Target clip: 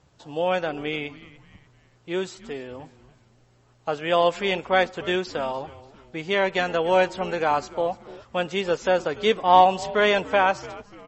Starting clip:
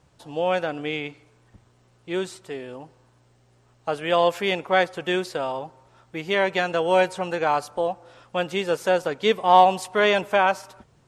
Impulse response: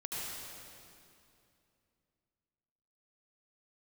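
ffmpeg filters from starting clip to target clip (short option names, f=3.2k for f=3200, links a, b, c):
-filter_complex "[0:a]asplit=4[a][b][c][d];[b]adelay=293,afreqshift=-140,volume=-19dB[e];[c]adelay=586,afreqshift=-280,volume=-26.3dB[f];[d]adelay=879,afreqshift=-420,volume=-33.7dB[g];[a][e][f][g]amix=inputs=4:normalize=0" -ar 32000 -c:a libmp3lame -b:a 32k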